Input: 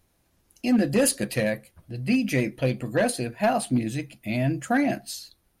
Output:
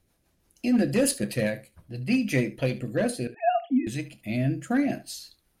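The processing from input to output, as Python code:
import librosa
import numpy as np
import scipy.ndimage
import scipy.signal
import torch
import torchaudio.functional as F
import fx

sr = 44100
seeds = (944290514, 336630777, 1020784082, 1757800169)

y = fx.sine_speech(x, sr, at=(3.27, 3.87))
y = fx.rotary_switch(y, sr, hz=6.0, then_hz=0.6, switch_at_s=1.99)
y = fx.room_early_taps(y, sr, ms=(29, 73), db=(-15.5, -17.0))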